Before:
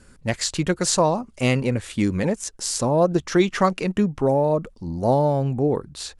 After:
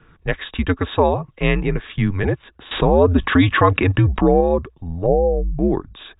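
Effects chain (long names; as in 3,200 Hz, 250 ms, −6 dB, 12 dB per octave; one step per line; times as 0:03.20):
0:05.06–0:05.59: expanding power law on the bin magnitudes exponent 2.1
high-pass filter 54 Hz 6 dB per octave
hollow resonant body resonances 1,200/1,800 Hz, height 7 dB
frequency shifter −88 Hz
linear-phase brick-wall low-pass 3,800 Hz
0:02.71–0:04.41: envelope flattener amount 50%
level +3 dB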